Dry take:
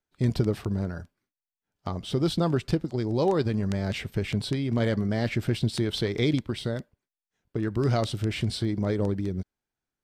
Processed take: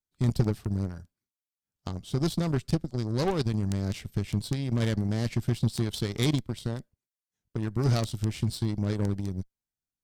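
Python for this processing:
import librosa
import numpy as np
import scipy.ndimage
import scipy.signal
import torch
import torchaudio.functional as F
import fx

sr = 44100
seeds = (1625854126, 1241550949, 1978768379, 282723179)

y = fx.cheby_harmonics(x, sr, harmonics=(2, 7, 8), levels_db=(-12, -21, -25), full_scale_db=-12.0)
y = fx.bass_treble(y, sr, bass_db=8, treble_db=11)
y = y * librosa.db_to_amplitude(-5.0)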